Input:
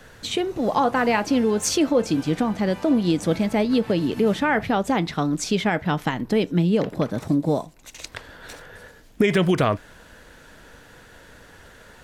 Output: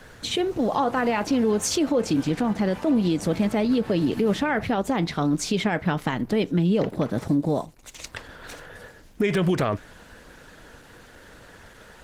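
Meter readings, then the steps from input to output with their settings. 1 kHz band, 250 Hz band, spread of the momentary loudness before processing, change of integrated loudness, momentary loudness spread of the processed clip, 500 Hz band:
-3.0 dB, -1.0 dB, 14 LU, -2.0 dB, 16 LU, -2.0 dB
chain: limiter -15.5 dBFS, peak gain reduction 6.5 dB; gain +1.5 dB; Opus 16 kbps 48000 Hz

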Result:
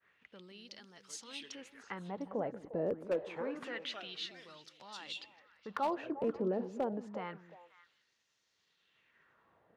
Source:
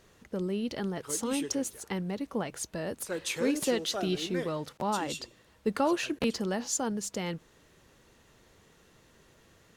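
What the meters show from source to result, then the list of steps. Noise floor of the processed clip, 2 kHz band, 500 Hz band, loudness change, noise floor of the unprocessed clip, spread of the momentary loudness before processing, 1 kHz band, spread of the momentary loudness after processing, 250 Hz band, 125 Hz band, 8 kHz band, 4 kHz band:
-78 dBFS, -8.5 dB, -5.5 dB, -7.5 dB, -62 dBFS, 7 LU, -6.0 dB, 18 LU, -10.5 dB, -11.5 dB, -19.5 dB, -8.0 dB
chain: expander -56 dBFS; tone controls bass +9 dB, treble -13 dB; limiter -22 dBFS, peak gain reduction 8.5 dB; LFO band-pass sine 0.27 Hz 460–5600 Hz; wavefolder -30 dBFS; delay with a stepping band-pass 0.176 s, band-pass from 240 Hz, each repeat 1.4 oct, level -8 dB; gain +4.5 dB

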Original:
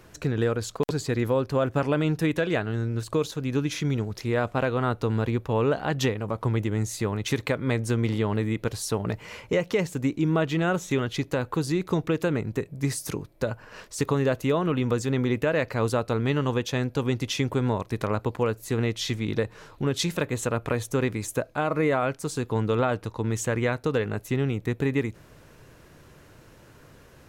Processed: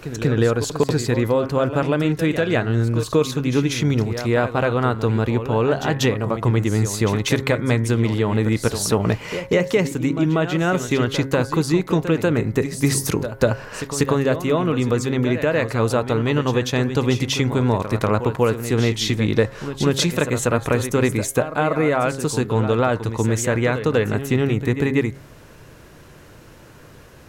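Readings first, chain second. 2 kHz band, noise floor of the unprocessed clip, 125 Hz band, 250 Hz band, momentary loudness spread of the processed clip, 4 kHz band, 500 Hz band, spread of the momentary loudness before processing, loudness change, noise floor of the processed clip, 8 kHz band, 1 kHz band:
+6.5 dB, -52 dBFS, +6.5 dB, +6.5 dB, 2 LU, +7.0 dB, +6.5 dB, 5 LU, +6.5 dB, -44 dBFS, +8.0 dB, +6.0 dB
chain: de-hum 135.3 Hz, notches 16; vocal rider within 4 dB 0.5 s; reverse echo 0.191 s -10.5 dB; gain +6.5 dB

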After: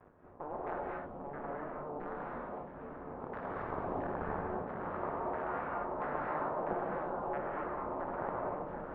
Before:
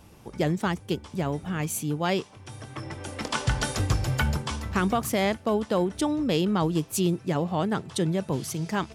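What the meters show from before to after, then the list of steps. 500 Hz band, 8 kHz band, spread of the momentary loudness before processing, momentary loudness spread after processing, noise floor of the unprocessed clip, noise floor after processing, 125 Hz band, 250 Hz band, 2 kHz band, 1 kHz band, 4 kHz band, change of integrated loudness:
-9.0 dB, under -40 dB, 9 LU, 8 LU, -50 dBFS, -49 dBFS, -21.0 dB, -17.0 dB, -11.5 dB, -5.0 dB, under -35 dB, -11.5 dB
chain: stepped spectrum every 0.4 s; de-hum 161.1 Hz, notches 31; gate with hold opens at -38 dBFS; tilt -3 dB/oct; added harmonics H 3 -8 dB, 7 -27 dB, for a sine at -10.5 dBFS; limiter -20 dBFS, peak gain reduction 11.5 dB; half-wave rectifier; LFO low-pass saw down 1.5 Hz 640–1600 Hz; tone controls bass -15 dB, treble -9 dB; ring modulator 150 Hz; on a send: delay with a stepping band-pass 0.475 s, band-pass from 170 Hz, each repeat 1.4 oct, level -3 dB; on the sum: non-linear reverb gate 0.28 s rising, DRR -2.5 dB; gain +1 dB

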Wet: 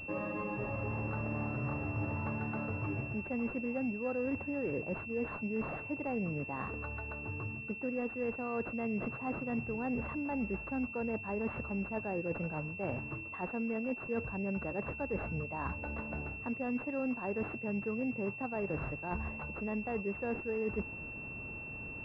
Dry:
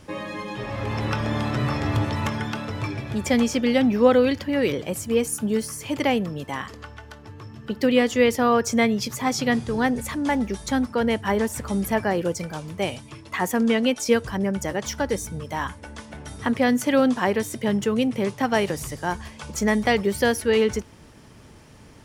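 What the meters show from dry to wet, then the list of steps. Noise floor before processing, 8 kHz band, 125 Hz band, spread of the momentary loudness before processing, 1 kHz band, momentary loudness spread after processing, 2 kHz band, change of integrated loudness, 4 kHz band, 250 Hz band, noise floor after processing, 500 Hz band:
-47 dBFS, under -40 dB, -10.0 dB, 13 LU, -14.5 dB, 4 LU, -10.5 dB, -13.5 dB, under -30 dB, -13.5 dB, -45 dBFS, -15.0 dB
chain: reverse; compressor 10:1, threshold -33 dBFS, peak gain reduction 22 dB; reverse; pulse-width modulation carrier 2700 Hz

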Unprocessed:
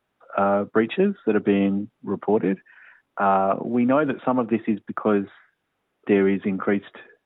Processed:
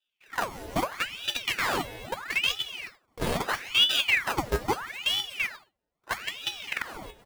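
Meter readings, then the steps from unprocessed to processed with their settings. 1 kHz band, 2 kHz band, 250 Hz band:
-7.0 dB, +4.5 dB, -18.0 dB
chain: notch 1700 Hz, Q 6.9; on a send: echo 88 ms -20 dB; on the sum: LFO low-pass sine 0.34 Hz 220–2700 Hz; in parallel at +0.5 dB: compressor 10:1, threshold -24 dBFS, peak gain reduction 12.5 dB; on the sum: dynamic EQ 420 Hz, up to -4 dB, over -27 dBFS, Q 3.2; sample-rate reducer 1100 Hz, jitter 0%; non-linear reverb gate 0.36 s rising, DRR 1.5 dB; level quantiser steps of 15 dB; resonator 240 Hz, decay 0.16 s, harmonics all, mix 90%; stuck buffer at 1.64/2.73/6.68, samples 2048, times 2; ring modulator with a swept carrier 1700 Hz, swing 90%, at 0.77 Hz; gain +2.5 dB

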